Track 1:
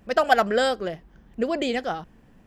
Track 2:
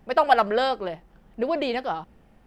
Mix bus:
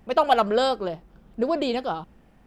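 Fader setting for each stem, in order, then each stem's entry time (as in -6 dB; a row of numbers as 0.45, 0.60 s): -7.5, -0.5 dB; 0.00, 0.00 s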